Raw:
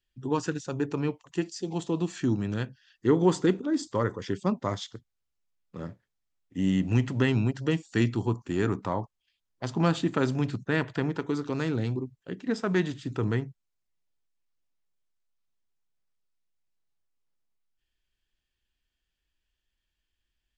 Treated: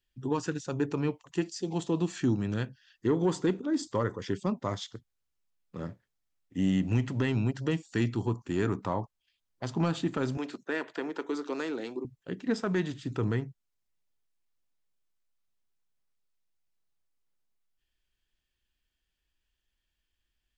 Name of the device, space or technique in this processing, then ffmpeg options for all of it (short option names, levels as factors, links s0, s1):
soft clipper into limiter: -filter_complex "[0:a]asoftclip=type=tanh:threshold=0.251,alimiter=limit=0.126:level=0:latency=1:release=466,asettb=1/sr,asplit=3[s0][s1][s2];[s0]atrim=end=10.374[s3];[s1]atrim=start=10.37:end=12.05,asetpts=PTS-STARTPTS,afade=t=in:d=0.004:c=qsin,afade=t=out:st=1.676:d=0.004:c=qsin,highpass=f=290:w=0.5412,highpass=f=290:w=1.3066[s4];[s2]atrim=start=12.046[s5];[s3][s4]acrossfade=d=0.004:c1=hsin:c2=qsin[s6];[s6][s5]acrossfade=d=0.004:c1=qsin:c2=hsin"